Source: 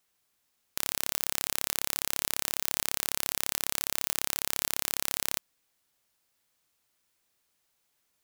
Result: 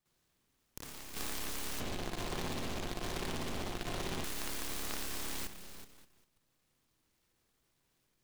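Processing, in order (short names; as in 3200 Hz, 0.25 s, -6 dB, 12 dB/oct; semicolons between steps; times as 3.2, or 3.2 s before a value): LPF 9400 Hz 12 dB/oct; bell 700 Hz -9.5 dB 0.89 oct; reverb RT60 1.1 s, pre-delay 47 ms, DRR -8.5 dB; 1.8–4.24 sample-rate reducer 3200 Hz, jitter 0%; compressor 5:1, threshold -36 dBFS, peak gain reduction 15.5 dB; tilt -2 dB/oct; notch 1400 Hz, Q 8.8; level quantiser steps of 10 dB; noise-modulated delay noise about 2300 Hz, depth 0.15 ms; gain +3 dB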